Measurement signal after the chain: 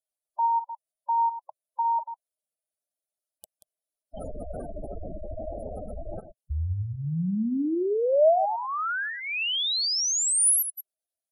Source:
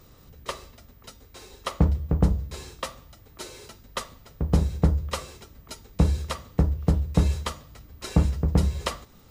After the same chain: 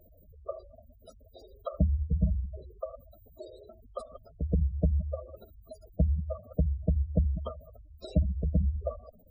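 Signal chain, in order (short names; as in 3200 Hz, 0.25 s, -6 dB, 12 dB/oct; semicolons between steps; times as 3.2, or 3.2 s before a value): reverse delay 0.107 s, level -11 dB; thirty-one-band EQ 125 Hz -9 dB, 630 Hz +11 dB, 1000 Hz -7 dB, 2000 Hz -12 dB, 10000 Hz +7 dB; spectral gate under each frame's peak -10 dB strong; gain -4 dB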